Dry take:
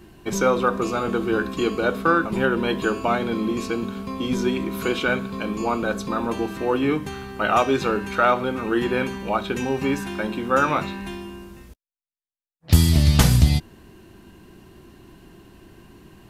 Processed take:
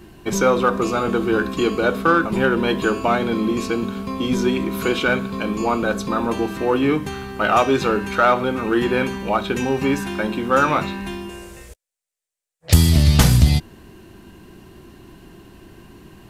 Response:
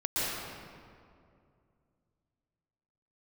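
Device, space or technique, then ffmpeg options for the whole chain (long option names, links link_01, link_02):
parallel distortion: -filter_complex "[0:a]asettb=1/sr,asplit=3[link_01][link_02][link_03];[link_01]atrim=end=11.294[link_04];[link_02]atrim=start=11.29:end=12.74,asetpts=PTS-STARTPTS,afade=type=in:duration=0.004:curve=qsin,afade=type=out:start_time=1.446:duration=0.004:curve=qsin,equalizer=frequency=250:width_type=o:width=1:gain=-12,equalizer=frequency=500:width_type=o:width=1:gain=11,equalizer=frequency=1000:width_type=o:width=1:gain=-3,equalizer=frequency=2000:width_type=o:width=1:gain=5,equalizer=frequency=8000:width_type=o:width=1:gain=11[link_05];[link_03]atrim=start=12.736[link_06];[link_04][link_05]acrossfade=duration=0.004:curve1=hsin:curve2=qsin[link_07];[link_07][link_06]acrossfade=duration=0.004:curve1=qsin:curve2=hsin,asplit=2[link_08][link_09];[link_09]asoftclip=type=hard:threshold=-18.5dB,volume=-9dB[link_10];[link_08][link_10]amix=inputs=2:normalize=0,volume=1dB"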